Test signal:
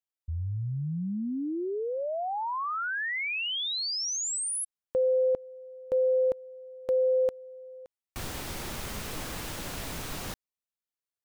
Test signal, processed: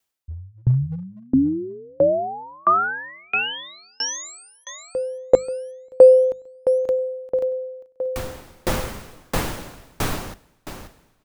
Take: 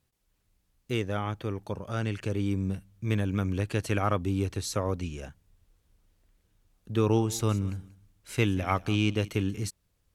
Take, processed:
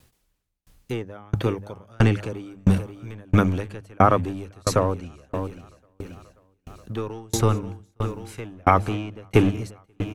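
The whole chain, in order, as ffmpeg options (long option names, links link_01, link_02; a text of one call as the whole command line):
ffmpeg -i in.wav -filter_complex "[0:a]bandreject=frequency=50:width_type=h:width=6,bandreject=frequency=100:width_type=h:width=6,bandreject=frequency=150:width_type=h:width=6,bandreject=frequency=200:width_type=h:width=6,acrossover=split=430|1800[link_01][link_02][link_03];[link_01]asoftclip=type=hard:threshold=-29dB[link_04];[link_03]acompressor=threshold=-41dB:ratio=6:attack=3.1:release=708:detection=rms[link_05];[link_04][link_02][link_05]amix=inputs=3:normalize=0,aecho=1:1:534|1068|1602|2136|2670:0.211|0.11|0.0571|0.0297|0.0155,alimiter=level_in=19dB:limit=-1dB:release=50:level=0:latency=1,aeval=exprs='val(0)*pow(10,-37*if(lt(mod(1.5*n/s,1),2*abs(1.5)/1000),1-mod(1.5*n/s,1)/(2*abs(1.5)/1000),(mod(1.5*n/s,1)-2*abs(1.5)/1000)/(1-2*abs(1.5)/1000))/20)':channel_layout=same" out.wav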